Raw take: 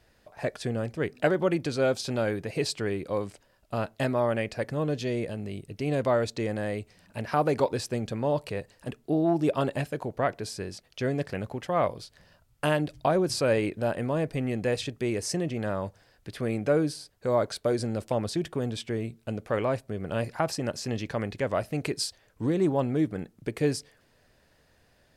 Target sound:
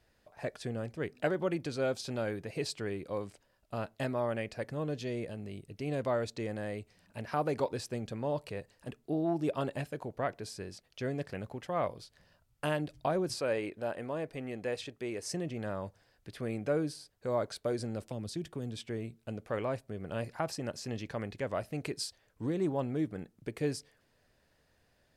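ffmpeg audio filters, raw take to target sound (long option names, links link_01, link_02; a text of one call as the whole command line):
ffmpeg -i in.wav -filter_complex "[0:a]asettb=1/sr,asplit=3[link_01][link_02][link_03];[link_01]atrim=end=13.344[link_04];[link_02]atrim=start=13.34:end=15.26,asetpts=PTS-STARTPTS,afade=type=in:duration=0.004:curve=qsin,afade=type=out:start_time=1.916:duration=0.004:curve=qsin,bass=frequency=250:gain=-8,treble=frequency=4000:gain=-3[link_05];[link_03]atrim=start=15.256[link_06];[link_04][link_05]acrossfade=duration=0.004:curve1=hsin:curve2=qsin[link_07];[link_07][link_06]acrossfade=duration=0.004:curve1=qsin:curve2=hsin,asettb=1/sr,asplit=3[link_08][link_09][link_10];[link_08]atrim=end=18.024[link_11];[link_09]atrim=start=18.02:end=18.79,asetpts=PTS-STARTPTS,afade=type=in:duration=0.004:curve=qsin,afade=type=out:start_time=0.766:duration=0.004:curve=qsin,acrossover=split=350|3000[link_12][link_13][link_14];[link_13]acompressor=threshold=-40dB:ratio=4[link_15];[link_12][link_15][link_14]amix=inputs=3:normalize=0[link_16];[link_10]atrim=start=18.786[link_17];[link_11][link_16]acrossfade=duration=0.004:curve1=hsin:curve2=qsin[link_18];[link_18][link_17]acrossfade=duration=0.004:curve1=qsin:curve2=hsin,volume=-7dB" out.wav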